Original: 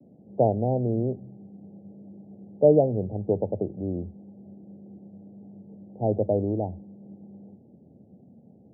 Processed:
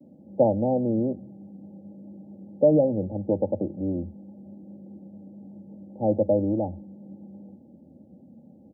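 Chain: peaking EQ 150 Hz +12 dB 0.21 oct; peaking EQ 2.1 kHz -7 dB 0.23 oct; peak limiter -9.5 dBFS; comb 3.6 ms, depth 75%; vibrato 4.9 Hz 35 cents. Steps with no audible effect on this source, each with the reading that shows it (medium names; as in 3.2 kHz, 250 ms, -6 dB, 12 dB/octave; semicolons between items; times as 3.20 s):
peaking EQ 2.1 kHz: input has nothing above 810 Hz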